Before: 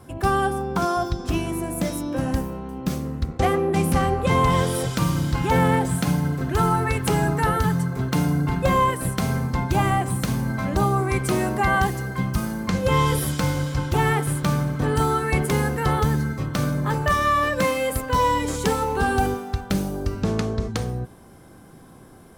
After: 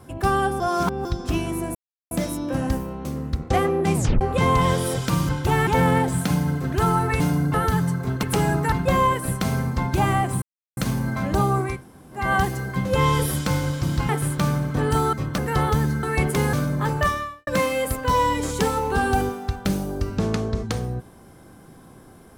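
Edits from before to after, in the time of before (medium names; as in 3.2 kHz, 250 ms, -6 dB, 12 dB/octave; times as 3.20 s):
0.60–1.05 s: reverse
1.75 s: insert silence 0.36 s
2.69–2.94 s: delete
3.84 s: tape stop 0.26 s
5.18–5.44 s: swap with 13.76–14.14 s
6.97–7.46 s: swap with 8.15–8.49 s
10.19 s: insert silence 0.35 s
11.14–11.64 s: room tone, crossfade 0.24 s
12.27–12.78 s: delete
15.18–15.68 s: swap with 16.33–16.58 s
17.10–17.52 s: fade out quadratic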